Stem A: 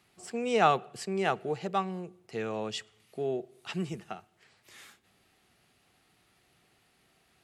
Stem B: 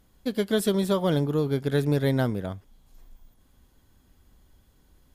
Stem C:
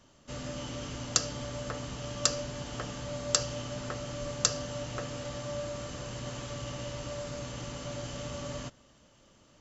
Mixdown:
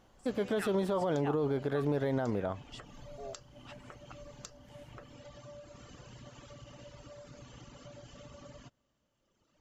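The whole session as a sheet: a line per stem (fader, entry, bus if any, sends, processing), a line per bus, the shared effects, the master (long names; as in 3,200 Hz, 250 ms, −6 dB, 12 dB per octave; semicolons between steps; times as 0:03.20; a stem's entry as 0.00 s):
−14.5 dB, 0.00 s, no send, reverb reduction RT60 1.8 s; high-pass on a step sequencer 5.1 Hz 600–2,200 Hz
−5.0 dB, 0.00 s, no send, drawn EQ curve 170 Hz 0 dB, 790 Hz +11 dB, 12,000 Hz −11 dB
−5.5 dB, 0.00 s, no send, reverb reduction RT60 2 s; high-shelf EQ 4,500 Hz −6 dB; downward compressor 4 to 1, threshold −42 dBFS, peak gain reduction 16 dB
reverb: not used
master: brickwall limiter −23 dBFS, peak gain reduction 11.5 dB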